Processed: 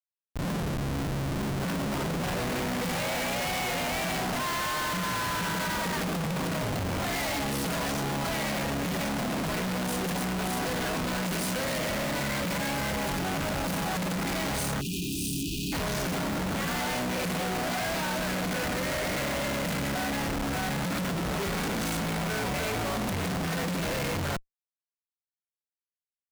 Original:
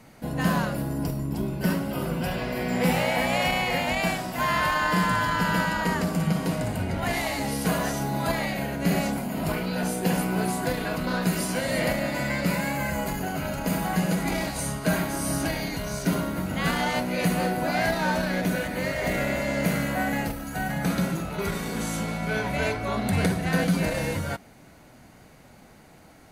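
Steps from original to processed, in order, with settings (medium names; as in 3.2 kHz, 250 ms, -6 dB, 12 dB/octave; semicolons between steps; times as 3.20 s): fade-in on the opening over 2.90 s; Schmitt trigger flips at -39 dBFS; spectral selection erased 14.81–15.73 s, 430–2400 Hz; trim -3 dB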